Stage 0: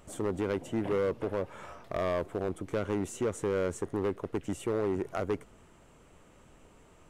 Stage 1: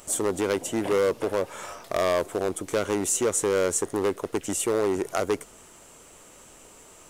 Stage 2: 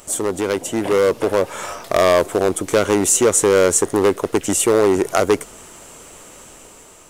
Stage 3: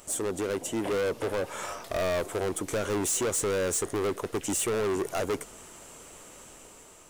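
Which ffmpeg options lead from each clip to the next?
-af "bass=f=250:g=-9,treble=f=4k:g=13,volume=7.5dB"
-af "dynaudnorm=f=430:g=5:m=5.5dB,volume=4.5dB"
-af "volume=18dB,asoftclip=hard,volume=-18dB,volume=-7.5dB"

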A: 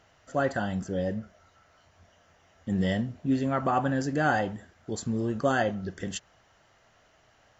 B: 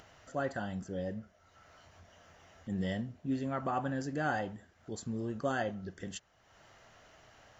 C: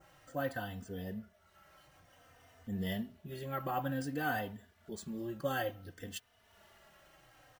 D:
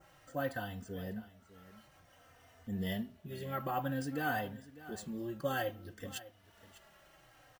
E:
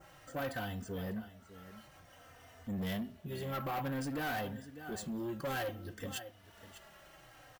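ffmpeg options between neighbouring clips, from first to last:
-af "acompressor=mode=upward:threshold=-40dB:ratio=2.5,volume=-8dB"
-filter_complex "[0:a]adynamicequalizer=threshold=0.00158:dfrequency=3300:dqfactor=0.95:tfrequency=3300:tqfactor=0.95:attack=5:release=100:ratio=0.375:range=3.5:mode=boostabove:tftype=bell,acrusher=samples=3:mix=1:aa=0.000001,asplit=2[a][b];[b]adelay=3.2,afreqshift=-0.56[c];[a][c]amix=inputs=2:normalize=1"
-af "aecho=1:1:600:0.141"
-af "asoftclip=type=tanh:threshold=-38dB,volume=4.5dB"

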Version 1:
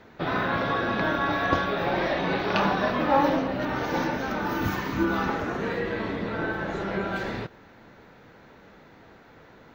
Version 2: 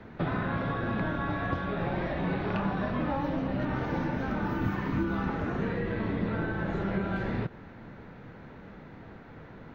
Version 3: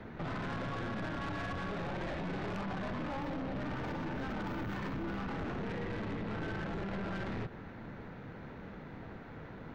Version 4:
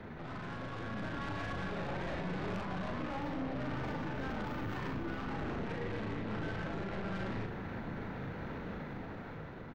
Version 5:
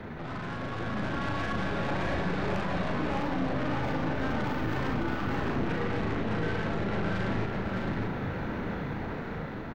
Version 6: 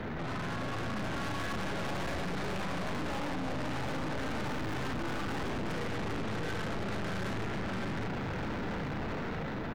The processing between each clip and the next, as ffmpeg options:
-filter_complex "[0:a]equalizer=f=62:w=0.57:g=-4,acrossover=split=140|2800[a][b][c];[a]acompressor=threshold=-46dB:ratio=4[d];[b]acompressor=threshold=-34dB:ratio=4[e];[c]acompressor=threshold=-52dB:ratio=4[f];[d][e][f]amix=inputs=3:normalize=0,bass=f=250:g=11,treble=f=4k:g=-12,volume=1dB"
-af "alimiter=level_in=1dB:limit=-24dB:level=0:latency=1:release=21,volume=-1dB,aeval=exprs='(tanh(70.8*val(0)+0.35)-tanh(0.35))/70.8':c=same,volume=1.5dB"
-filter_complex "[0:a]alimiter=level_in=16.5dB:limit=-24dB:level=0:latency=1:release=20,volume=-16.5dB,dynaudnorm=f=210:g=9:m=5dB,asplit=2[a][b];[b]adelay=38,volume=-5dB[c];[a][c]amix=inputs=2:normalize=0,volume=1dB"
-af "aecho=1:1:612:0.668,volume=6.5dB"
-af "aeval=exprs='(tanh(100*val(0)+0.3)-tanh(0.3))/100':c=same,volume=6dB"

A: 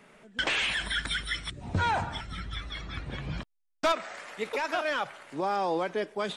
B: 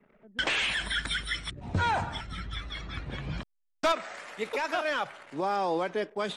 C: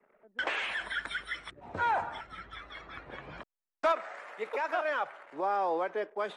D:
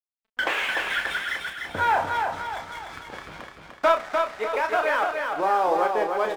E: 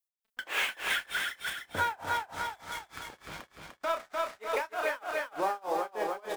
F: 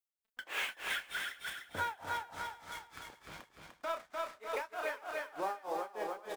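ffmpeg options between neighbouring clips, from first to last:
-af "anlmdn=0.00158"
-filter_complex "[0:a]acrossover=split=360 2100:gain=0.126 1 0.2[a][b][c];[a][b][c]amix=inputs=3:normalize=0"
-filter_complex "[0:a]aeval=exprs='sgn(val(0))*max(abs(val(0))-0.00335,0)':c=same,asplit=2[a][b];[b]adelay=32,volume=-7dB[c];[a][c]amix=inputs=2:normalize=0,asplit=2[d][e];[e]aecho=0:1:298|596|894|1192|1490|1788:0.596|0.268|0.121|0.0543|0.0244|0.011[f];[d][f]amix=inputs=2:normalize=0,volume=7.5dB"
-af "acompressor=threshold=-23dB:ratio=6,tremolo=f=3.3:d=0.97,crystalizer=i=2:c=0,volume=-2dB"
-af "aecho=1:1:403:0.1,volume=-6.5dB"

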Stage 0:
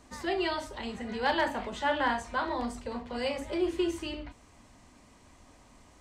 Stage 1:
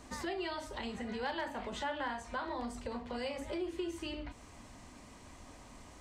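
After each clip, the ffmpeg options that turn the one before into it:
-af "acompressor=threshold=-43dB:ratio=3,volume=3.5dB"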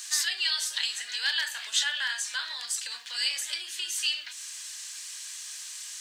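-af "aeval=exprs='val(0)+0.00316*(sin(2*PI*50*n/s)+sin(2*PI*2*50*n/s)/2+sin(2*PI*3*50*n/s)/3+sin(2*PI*4*50*n/s)/4+sin(2*PI*5*50*n/s)/5)':c=same,aexciter=amount=9.7:drive=7:freq=2.9k,highpass=f=1.7k:t=q:w=7,volume=-1dB"

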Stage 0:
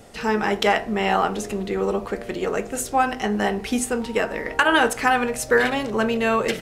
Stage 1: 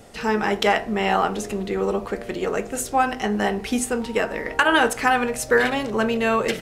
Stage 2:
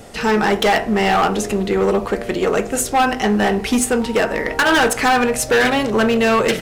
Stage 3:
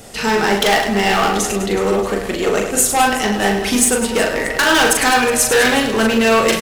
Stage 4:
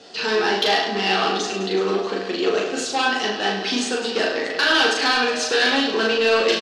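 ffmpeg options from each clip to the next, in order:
-af anull
-af "asoftclip=type=hard:threshold=-18.5dB,volume=7.5dB"
-filter_complex "[0:a]highshelf=f=3.2k:g=8.5,asplit=2[a][b];[b]aecho=0:1:40|104|206.4|370.2|632.4:0.631|0.398|0.251|0.158|0.1[c];[a][c]amix=inputs=2:normalize=0,volume=-2dB"
-af "highpass=350,equalizer=f=590:t=q:w=4:g=-7,equalizer=f=920:t=q:w=4:g=-6,equalizer=f=1.3k:t=q:w=4:g=-4,equalizer=f=2.1k:t=q:w=4:g=-9,equalizer=f=4.4k:t=q:w=4:g=5,lowpass=f=5k:w=0.5412,lowpass=f=5k:w=1.3066,asoftclip=type=tanh:threshold=-6.5dB,aecho=1:1:11|37:0.531|0.596,volume=-2dB"

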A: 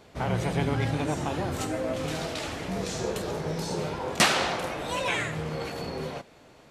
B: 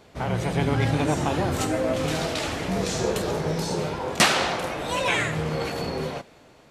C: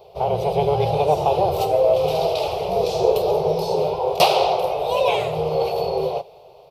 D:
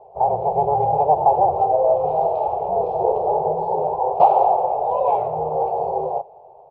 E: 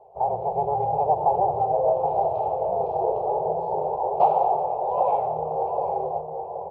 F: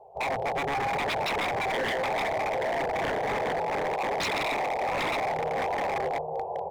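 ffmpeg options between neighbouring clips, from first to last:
-af "dynaudnorm=f=150:g=9:m=4.5dB,volume=1dB"
-af "firequalizer=gain_entry='entry(170,0);entry(250,-29);entry(390,11);entry(770,13);entry(1700,-21);entry(2500,2);entry(4900,3);entry(7100,-12);entry(14000,11)':delay=0.05:min_phase=1,volume=-2dB"
-af "lowpass=f=840:t=q:w=4.9,volume=-6.5dB"
-filter_complex "[0:a]asplit=2[a][b];[b]adelay=774,lowpass=f=1.2k:p=1,volume=-5dB,asplit=2[c][d];[d]adelay=774,lowpass=f=1.2k:p=1,volume=0.4,asplit=2[e][f];[f]adelay=774,lowpass=f=1.2k:p=1,volume=0.4,asplit=2[g][h];[h]adelay=774,lowpass=f=1.2k:p=1,volume=0.4,asplit=2[i][j];[j]adelay=774,lowpass=f=1.2k:p=1,volume=0.4[k];[a][c][e][g][i][k]amix=inputs=6:normalize=0,volume=-5.5dB"
-af "aeval=exprs='0.0668*(abs(mod(val(0)/0.0668+3,4)-2)-1)':c=same"

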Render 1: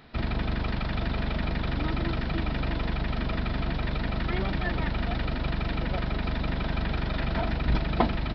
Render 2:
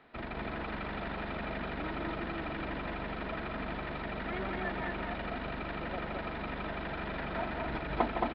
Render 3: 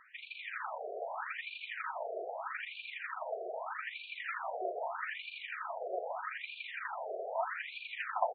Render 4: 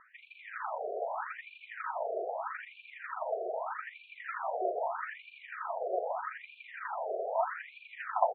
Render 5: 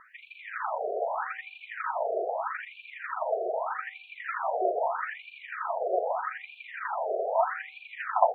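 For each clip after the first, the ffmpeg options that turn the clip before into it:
-filter_complex "[0:a]acrossover=split=260 3100:gain=0.224 1 0.0708[a][b][c];[a][b][c]amix=inputs=3:normalize=0,asplit=2[d][e];[e]aecho=0:1:160.3|221.6:0.355|0.708[f];[d][f]amix=inputs=2:normalize=0,volume=-4.5dB"
-af "asoftclip=type=hard:threshold=-24.5dB,afftfilt=real='re*between(b*sr/1024,520*pow(3300/520,0.5+0.5*sin(2*PI*0.8*pts/sr))/1.41,520*pow(3300/520,0.5+0.5*sin(2*PI*0.8*pts/sr))*1.41)':imag='im*between(b*sr/1024,520*pow(3300/520,0.5+0.5*sin(2*PI*0.8*pts/sr))/1.41,520*pow(3300/520,0.5+0.5*sin(2*PI*0.8*pts/sr))*1.41)':win_size=1024:overlap=0.75,volume=4.5dB"
-af "lowpass=1.3k,volume=5dB"
-af "bandreject=f=255.4:t=h:w=4,bandreject=f=510.8:t=h:w=4,bandreject=f=766.2:t=h:w=4,volume=5.5dB"

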